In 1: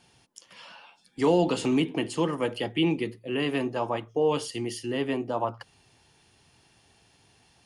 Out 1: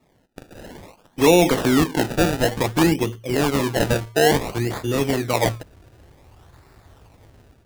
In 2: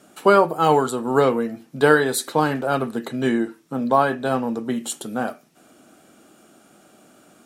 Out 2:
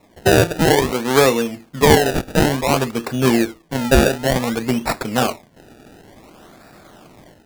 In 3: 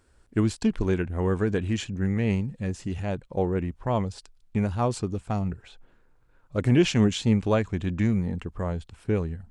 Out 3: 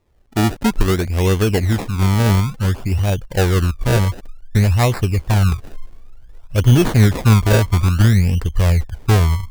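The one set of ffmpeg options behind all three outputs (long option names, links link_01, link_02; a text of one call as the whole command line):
ffmpeg -i in.wav -af "asubboost=boost=6.5:cutoff=87,acrusher=samples=28:mix=1:aa=0.000001:lfo=1:lforange=28:lforate=0.56,dynaudnorm=framelen=220:gausssize=3:maxgain=9dB" out.wav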